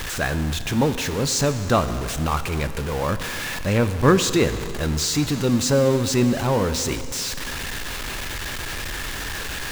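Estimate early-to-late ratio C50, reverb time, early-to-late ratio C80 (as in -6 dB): 11.5 dB, 2.5 s, 12.0 dB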